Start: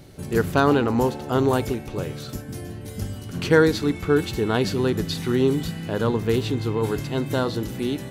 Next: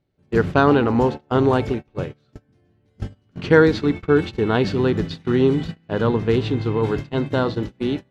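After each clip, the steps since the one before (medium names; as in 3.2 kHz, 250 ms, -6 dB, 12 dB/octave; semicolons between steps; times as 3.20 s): low-pass 3.6 kHz 12 dB/octave; gate -27 dBFS, range -29 dB; trim +3 dB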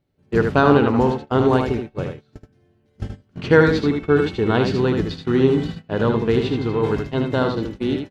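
delay 77 ms -5.5 dB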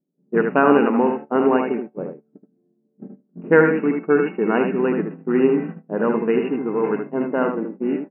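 brick-wall FIR band-pass 160–2900 Hz; level-controlled noise filter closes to 310 Hz, open at -11 dBFS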